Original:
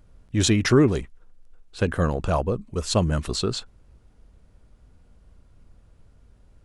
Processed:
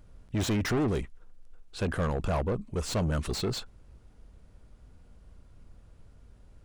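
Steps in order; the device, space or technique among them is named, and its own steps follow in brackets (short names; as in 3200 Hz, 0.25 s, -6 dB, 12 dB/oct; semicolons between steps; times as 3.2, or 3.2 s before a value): saturation between pre-emphasis and de-emphasis (high shelf 3000 Hz +11.5 dB; soft clip -24 dBFS, distortion -5 dB; high shelf 3000 Hz -11.5 dB)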